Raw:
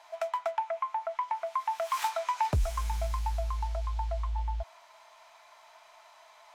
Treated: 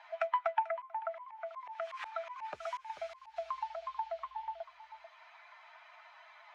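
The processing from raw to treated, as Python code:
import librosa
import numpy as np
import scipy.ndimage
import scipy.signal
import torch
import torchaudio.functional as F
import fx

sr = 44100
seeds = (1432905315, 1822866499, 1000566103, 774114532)

y = fx.bin_expand(x, sr, power=1.5)
y = scipy.signal.sosfilt(scipy.signal.butter(2, 1000.0, 'highpass', fs=sr, output='sos'), y)
y = y + 10.0 ** (-16.0 / 20.0) * np.pad(y, (int(440 * sr / 1000.0), 0))[:len(y)]
y = fx.auto_swell(y, sr, attack_ms=352.0, at=(0.79, 3.36), fade=0.02)
y = scipy.signal.sosfilt(scipy.signal.butter(2, 2400.0, 'lowpass', fs=sr, output='sos'), y)
y = fx.band_squash(y, sr, depth_pct=40)
y = y * 10.0 ** (10.0 / 20.0)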